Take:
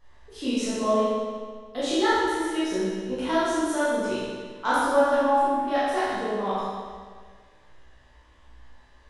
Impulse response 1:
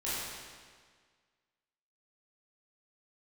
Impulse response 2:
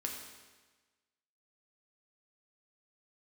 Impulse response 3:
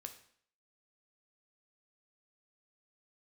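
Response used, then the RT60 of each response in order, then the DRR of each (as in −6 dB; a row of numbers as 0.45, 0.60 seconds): 1; 1.7, 1.3, 0.60 seconds; −11.0, 0.0, 5.5 decibels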